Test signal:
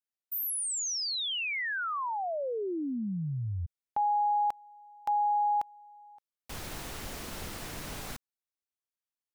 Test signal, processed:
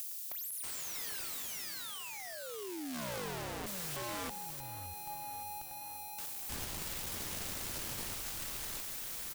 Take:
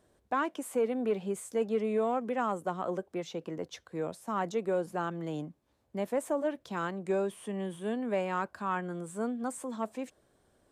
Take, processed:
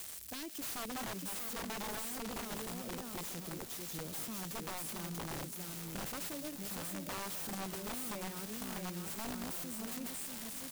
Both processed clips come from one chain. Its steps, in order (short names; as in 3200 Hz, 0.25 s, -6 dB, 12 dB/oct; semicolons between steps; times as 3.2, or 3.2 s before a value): switching spikes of -27 dBFS; passive tone stack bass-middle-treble 10-0-1; feedback echo 0.637 s, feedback 16%, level -4.5 dB; wrapped overs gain 46.5 dB; compressor 2:1, threshold -57 dBFS; warbling echo 0.567 s, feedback 67%, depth 155 cents, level -16 dB; gain +15 dB